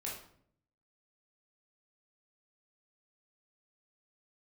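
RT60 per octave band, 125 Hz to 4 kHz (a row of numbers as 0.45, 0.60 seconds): 1.0, 0.85, 0.70, 0.55, 0.50, 0.45 seconds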